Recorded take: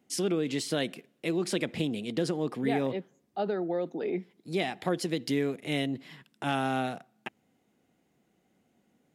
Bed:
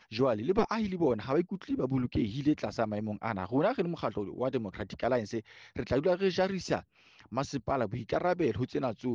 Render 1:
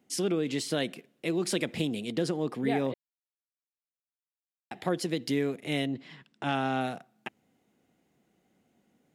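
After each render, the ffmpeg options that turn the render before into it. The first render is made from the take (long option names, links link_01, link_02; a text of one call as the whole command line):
ffmpeg -i in.wav -filter_complex "[0:a]asettb=1/sr,asplit=3[link_01][link_02][link_03];[link_01]atrim=end=1.374[link_04];[link_02]atrim=start=1.37:end=2.11,asetpts=PTS-STARTPTS,afade=type=in:duration=0.004:curve=qsin,afade=type=out:start_time=0.736:duration=0.004:curve=qsin,highshelf=frequency=4900:gain=5[link_05];[link_03]atrim=start=2.106[link_06];[link_04][link_05]acrossfade=duration=0.004:curve1=hsin:curve2=qsin[link_07];[link_07][link_06]acrossfade=duration=0.004:curve1=qsin:curve2=hsin,asettb=1/sr,asplit=3[link_08][link_09][link_10];[link_08]atrim=end=5.854[link_11];[link_09]atrim=start=5.85:end=6.81,asetpts=PTS-STARTPTS,afade=type=in:duration=0.004:curve=qsin,afade=type=out:start_time=0.956:duration=0.004:curve=qsin,lowpass=6300[link_12];[link_10]atrim=start=6.806[link_13];[link_11][link_12]acrossfade=duration=0.004:curve1=hsin:curve2=qsin[link_14];[link_14][link_13]acrossfade=duration=0.004:curve1=qsin:curve2=hsin,asplit=3[link_15][link_16][link_17];[link_15]atrim=end=2.94,asetpts=PTS-STARTPTS,afade=type=out:start_time=2.936:duration=0.004:curve=hsin[link_18];[link_16]atrim=start=2.94:end=4.71,asetpts=PTS-STARTPTS,volume=0[link_19];[link_17]atrim=start=4.71,asetpts=PTS-STARTPTS,afade=type=in:duration=0.004:curve=hsin[link_20];[link_18][link_19][link_20]concat=n=3:v=0:a=1" out.wav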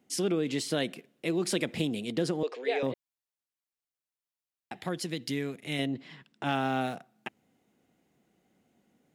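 ffmpeg -i in.wav -filter_complex "[0:a]asettb=1/sr,asplit=3[link_01][link_02][link_03];[link_01]atrim=end=2.434[link_04];[link_02]atrim=start=2.43:end=2.83,asetpts=PTS-STARTPTS,afade=type=in:duration=0.004:curve=qsin,afade=type=out:start_time=0.396:duration=0.004:curve=qsin,highpass=frequency=450:width=0.5412,highpass=frequency=450:width=1.3066,equalizer=frequency=480:width_type=q:width=4:gain=8,equalizer=frequency=810:width_type=q:width=4:gain=-5,equalizer=frequency=1200:width_type=q:width=4:gain=-4,equalizer=frequency=2600:width_type=q:width=4:gain=6,equalizer=frequency=4200:width_type=q:width=4:gain=5,equalizer=frequency=6400:width_type=q:width=4:gain=5,lowpass=frequency=6900:width=0.5412,lowpass=frequency=6900:width=1.3066[link_05];[link_03]atrim=start=2.826[link_06];[link_04][link_05]acrossfade=duration=0.004:curve1=hsin:curve2=qsin[link_07];[link_07][link_06]acrossfade=duration=0.004:curve1=qsin:curve2=hsin,asettb=1/sr,asplit=3[link_08][link_09][link_10];[link_08]atrim=end=4.764[link_11];[link_09]atrim=start=4.76:end=5.79,asetpts=PTS-STARTPTS,afade=type=in:duration=0.004:curve=qsin,afade=type=out:start_time=1.026:duration=0.004:curve=qsin,equalizer=frequency=510:width=0.53:gain=-6.5[link_12];[link_10]atrim=start=5.786[link_13];[link_11][link_12]acrossfade=duration=0.004:curve1=hsin:curve2=qsin[link_14];[link_14][link_13]acrossfade=duration=0.004:curve1=qsin:curve2=hsin,asettb=1/sr,asplit=3[link_15][link_16][link_17];[link_15]atrim=end=6.454[link_18];[link_16]atrim=start=6.45:end=6.95,asetpts=PTS-STARTPTS,afade=type=in:duration=0.004:curve=qsin,afade=type=out:start_time=0.496:duration=0.004:curve=qsin,aeval=exprs='val(0)*gte(abs(val(0)),0.00316)':channel_layout=same[link_19];[link_17]atrim=start=6.946[link_20];[link_18][link_19]acrossfade=duration=0.004:curve1=hsin:curve2=qsin[link_21];[link_21][link_20]acrossfade=duration=0.004:curve1=qsin:curve2=hsin" out.wav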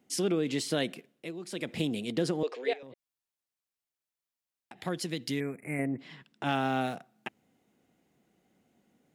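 ffmpeg -i in.wav -filter_complex "[0:a]asettb=1/sr,asplit=3[link_01][link_02][link_03];[link_01]atrim=end=2.734[link_04];[link_02]atrim=start=2.73:end=4.82,asetpts=PTS-STARTPTS,afade=type=in:duration=0.004:curve=qsin,afade=type=out:start_time=2.086:duration=0.004:curve=qsin,acompressor=threshold=-44dB:ratio=10:attack=3.2:release=140:knee=1:detection=peak[link_05];[link_03]atrim=start=4.816[link_06];[link_04][link_05]acrossfade=duration=0.004:curve1=hsin:curve2=qsin[link_07];[link_07][link_06]acrossfade=duration=0.004:curve1=qsin:curve2=hsin,asettb=1/sr,asplit=3[link_08][link_09][link_10];[link_08]atrim=end=5.404[link_11];[link_09]atrim=start=5.4:end=5.99,asetpts=PTS-STARTPTS,afade=type=in:duration=0.004:curve=qsin,afade=type=out:start_time=0.586:duration=0.004:curve=qsin,asuperstop=centerf=4400:order=20:qfactor=0.88[link_12];[link_10]atrim=start=5.986[link_13];[link_11][link_12]acrossfade=duration=0.004:curve1=hsin:curve2=qsin[link_14];[link_14][link_13]acrossfade=duration=0.004:curve1=qsin:curve2=hsin,asplit=3[link_15][link_16][link_17];[link_15]atrim=end=1.33,asetpts=PTS-STARTPTS,afade=type=out:start_time=0.87:duration=0.46:curve=qsin:silence=0.251189[link_18];[link_16]atrim=start=1.33:end=1.5,asetpts=PTS-STARTPTS,volume=-12dB[link_19];[link_17]atrim=start=1.5,asetpts=PTS-STARTPTS,afade=type=in:duration=0.46:curve=qsin:silence=0.251189[link_20];[link_18][link_19][link_20]concat=n=3:v=0:a=1" out.wav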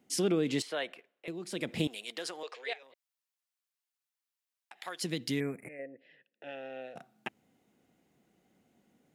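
ffmpeg -i in.wav -filter_complex "[0:a]asettb=1/sr,asplit=3[link_01][link_02][link_03];[link_01]atrim=end=0.624[link_04];[link_02]atrim=start=0.62:end=1.28,asetpts=PTS-STARTPTS,afade=type=in:duration=0.004:curve=qsin,afade=type=out:start_time=0.656:duration=0.004:curve=qsin,acrossover=split=490 3100:gain=0.0631 1 0.2[link_05][link_06][link_07];[link_05][link_06][link_07]amix=inputs=3:normalize=0[link_08];[link_03]atrim=start=1.276[link_09];[link_04][link_08]acrossfade=duration=0.004:curve1=hsin:curve2=qsin[link_10];[link_10][link_09]acrossfade=duration=0.004:curve1=qsin:curve2=hsin,asettb=1/sr,asplit=3[link_11][link_12][link_13];[link_11]atrim=end=1.874[link_14];[link_12]atrim=start=1.87:end=5.02,asetpts=PTS-STARTPTS,afade=type=in:duration=0.004:curve=qsin,afade=type=out:start_time=3.146:duration=0.004:curve=qsin,highpass=890[link_15];[link_13]atrim=start=5.016[link_16];[link_14][link_15]acrossfade=duration=0.004:curve1=hsin:curve2=qsin[link_17];[link_17][link_16]acrossfade=duration=0.004:curve1=qsin:curve2=hsin,asplit=3[link_18][link_19][link_20];[link_18]afade=type=out:start_time=5.67:duration=0.02[link_21];[link_19]asplit=3[link_22][link_23][link_24];[link_22]bandpass=frequency=530:width_type=q:width=8,volume=0dB[link_25];[link_23]bandpass=frequency=1840:width_type=q:width=8,volume=-6dB[link_26];[link_24]bandpass=frequency=2480:width_type=q:width=8,volume=-9dB[link_27];[link_25][link_26][link_27]amix=inputs=3:normalize=0,afade=type=in:start_time=5.67:duration=0.02,afade=type=out:start_time=6.95:duration=0.02[link_28];[link_20]afade=type=in:start_time=6.95:duration=0.02[link_29];[link_21][link_28][link_29]amix=inputs=3:normalize=0" out.wav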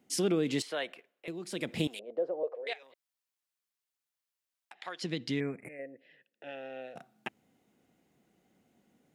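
ffmpeg -i in.wav -filter_complex "[0:a]asettb=1/sr,asplit=3[link_01][link_02][link_03];[link_01]atrim=end=1.994[link_04];[link_02]atrim=start=1.99:end=2.67,asetpts=PTS-STARTPTS,afade=type=in:duration=0.004:curve=qsin,afade=type=out:start_time=0.676:duration=0.004:curve=qsin,lowpass=frequency=560:width_type=q:width=6.3[link_05];[link_03]atrim=start=2.666[link_06];[link_04][link_05]acrossfade=duration=0.004:curve1=hsin:curve2=qsin[link_07];[link_07][link_06]acrossfade=duration=0.004:curve1=qsin:curve2=hsin,asettb=1/sr,asplit=3[link_08][link_09][link_10];[link_08]atrim=end=4.734[link_11];[link_09]atrim=start=4.73:end=5.65,asetpts=PTS-STARTPTS,afade=type=in:duration=0.004:curve=qsin,afade=type=out:start_time=0.916:duration=0.004:curve=qsin,lowpass=4900[link_12];[link_10]atrim=start=5.646[link_13];[link_11][link_12]acrossfade=duration=0.004:curve1=hsin:curve2=qsin[link_14];[link_14][link_13]acrossfade=duration=0.004:curve1=qsin:curve2=hsin" out.wav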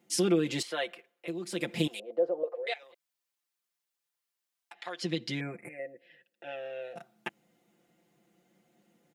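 ffmpeg -i in.wav -af "lowshelf=frequency=100:gain=-10.5,aecho=1:1:5.8:0.87" out.wav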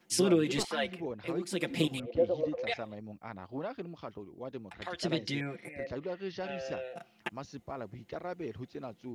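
ffmpeg -i in.wav -i bed.wav -filter_complex "[1:a]volume=-10.5dB[link_01];[0:a][link_01]amix=inputs=2:normalize=0" out.wav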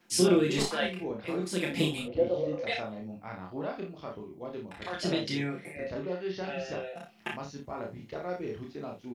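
ffmpeg -i in.wav -filter_complex "[0:a]asplit=2[link_01][link_02];[link_02]adelay=28,volume=-4dB[link_03];[link_01][link_03]amix=inputs=2:normalize=0,aecho=1:1:33|54:0.531|0.335" out.wav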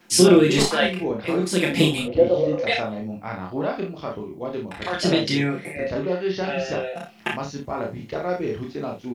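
ffmpeg -i in.wav -af "volume=10dB,alimiter=limit=-2dB:level=0:latency=1" out.wav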